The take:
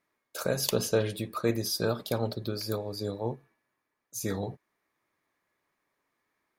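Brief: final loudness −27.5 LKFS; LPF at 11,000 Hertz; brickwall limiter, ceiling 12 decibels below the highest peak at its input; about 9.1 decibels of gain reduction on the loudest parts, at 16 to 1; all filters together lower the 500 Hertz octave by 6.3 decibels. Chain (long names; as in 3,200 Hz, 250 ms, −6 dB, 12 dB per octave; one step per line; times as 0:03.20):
low-pass filter 11,000 Hz
parametric band 500 Hz −7.5 dB
downward compressor 16 to 1, threshold −33 dBFS
level +14 dB
brickwall limiter −16 dBFS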